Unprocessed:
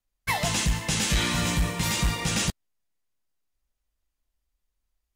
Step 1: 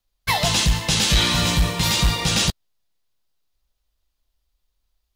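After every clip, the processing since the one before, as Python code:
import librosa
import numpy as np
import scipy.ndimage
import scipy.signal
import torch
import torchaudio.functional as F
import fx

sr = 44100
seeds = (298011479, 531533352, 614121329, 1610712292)

y = fx.graphic_eq(x, sr, hz=(250, 2000, 4000, 8000), db=(-4, -4, 6, -4))
y = y * librosa.db_to_amplitude(6.5)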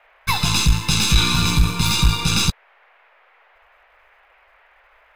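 y = np.where(x < 0.0, 10.0 ** (-7.0 / 20.0) * x, x)
y = y + 0.95 * np.pad(y, (int(0.8 * sr / 1000.0), 0))[:len(y)]
y = fx.dmg_noise_band(y, sr, seeds[0], low_hz=510.0, high_hz=2400.0, level_db=-55.0)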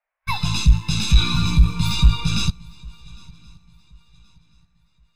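y = fx.leveller(x, sr, passes=1)
y = fx.echo_swing(y, sr, ms=1075, ratio=3, feedback_pct=44, wet_db=-17.5)
y = fx.spectral_expand(y, sr, expansion=1.5)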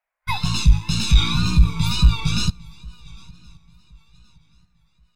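y = fx.wow_flutter(x, sr, seeds[1], rate_hz=2.1, depth_cents=80.0)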